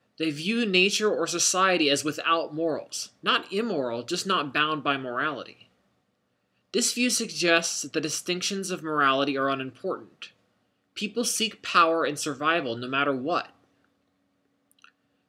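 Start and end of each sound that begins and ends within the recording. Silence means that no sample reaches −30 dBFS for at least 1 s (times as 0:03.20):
0:06.74–0:13.42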